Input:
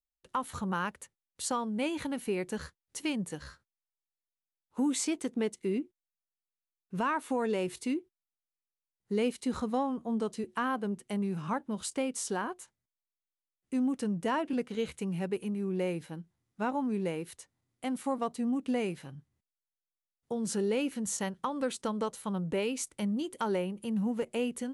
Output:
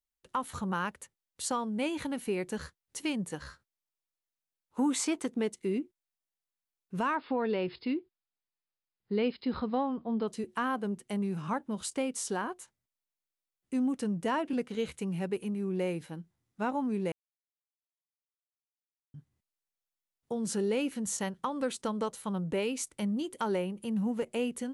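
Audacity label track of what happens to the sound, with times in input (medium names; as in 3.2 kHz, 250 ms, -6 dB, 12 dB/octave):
3.230000	5.260000	dynamic bell 1.1 kHz, up to +7 dB, over -51 dBFS, Q 0.94
7.150000	10.280000	brick-wall FIR low-pass 5.2 kHz
17.120000	19.140000	mute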